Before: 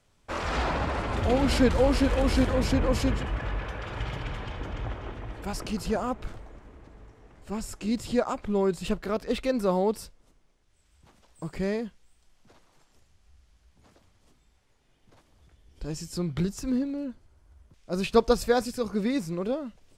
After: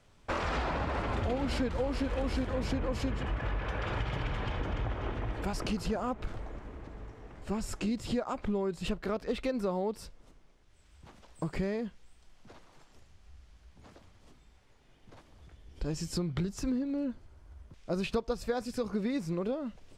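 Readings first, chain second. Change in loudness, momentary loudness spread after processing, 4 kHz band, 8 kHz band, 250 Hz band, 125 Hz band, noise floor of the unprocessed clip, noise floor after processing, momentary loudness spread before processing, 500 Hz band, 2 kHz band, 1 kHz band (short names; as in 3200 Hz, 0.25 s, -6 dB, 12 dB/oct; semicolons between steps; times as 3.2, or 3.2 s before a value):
-6.0 dB, 9 LU, -6.0 dB, -6.5 dB, -5.5 dB, -4.0 dB, -66 dBFS, -61 dBFS, 14 LU, -7.0 dB, -4.5 dB, -5.5 dB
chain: high shelf 7200 Hz -9.5 dB; compressor 6:1, threshold -34 dBFS, peak gain reduction 18 dB; gain +4.5 dB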